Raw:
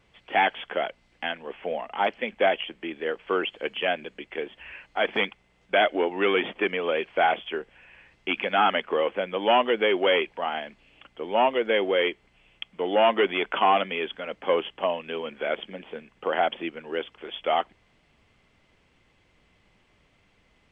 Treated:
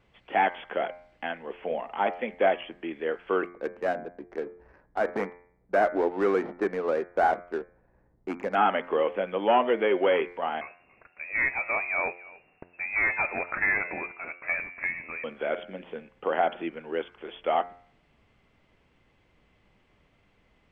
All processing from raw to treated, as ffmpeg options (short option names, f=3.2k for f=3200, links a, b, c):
-filter_complex "[0:a]asettb=1/sr,asplit=3[a][b][c];[a]atrim=end=3.444[d];[b]atrim=start=3.44:end=8.55,asetpts=PTS-STARTPTS,afade=t=in:d=0.004:c=qsin,afade=t=out:st=5.106:d=0.004:c=qsin,lowpass=f=1.8k:w=0.5412,lowpass=f=1.8k:w=1.3066,adynamicsmooth=sensitivity=5:basefreq=580[e];[c]atrim=start=8.546[f];[d][e]acrossfade=d=0.004:c1=hsin:c2=qsin[g];[g][f]acrossfade=d=0.004:c1=qsin:c2=hsin,asettb=1/sr,asplit=3[h][i][j];[h]atrim=end=10.614[k];[i]atrim=start=10.61:end=15.24,asetpts=PTS-STARTPTS,afade=t=in:d=0.004:c=qsin,afade=t=out:st=4.626:d=0.004:c=qsin,aecho=1:1:284:0.0794,atrim=end_sample=204183,lowpass=f=2.4k:t=q:w=0.5098,lowpass=f=2.4k:t=q:w=0.6013,lowpass=f=2.4k:t=q:w=0.9,lowpass=f=2.4k:t=q:w=2.563,afreqshift=-2800[l];[j]atrim=start=15.236[m];[k][l]acrossfade=d=0.004:c1=hsin:c2=qsin[n];[n][m]acrossfade=d=0.004:c1=qsin:c2=hsin,bandreject=f=88.18:t=h:w=4,bandreject=f=176.36:t=h:w=4,bandreject=f=264.54:t=h:w=4,bandreject=f=352.72:t=h:w=4,bandreject=f=440.9:t=h:w=4,bandreject=f=529.08:t=h:w=4,bandreject=f=617.26:t=h:w=4,bandreject=f=705.44:t=h:w=4,bandreject=f=793.62:t=h:w=4,bandreject=f=881.8:t=h:w=4,bandreject=f=969.98:t=h:w=4,bandreject=f=1.05816k:t=h:w=4,bandreject=f=1.14634k:t=h:w=4,bandreject=f=1.23452k:t=h:w=4,bandreject=f=1.3227k:t=h:w=4,bandreject=f=1.41088k:t=h:w=4,bandreject=f=1.49906k:t=h:w=4,bandreject=f=1.58724k:t=h:w=4,bandreject=f=1.67542k:t=h:w=4,bandreject=f=1.7636k:t=h:w=4,bandreject=f=1.85178k:t=h:w=4,bandreject=f=1.93996k:t=h:w=4,bandreject=f=2.02814k:t=h:w=4,bandreject=f=2.11632k:t=h:w=4,bandreject=f=2.2045k:t=h:w=4,bandreject=f=2.29268k:t=h:w=4,bandreject=f=2.38086k:t=h:w=4,acrossover=split=2600[o][p];[p]acompressor=threshold=-43dB:ratio=4:attack=1:release=60[q];[o][q]amix=inputs=2:normalize=0,highshelf=f=3.1k:g=-9.5"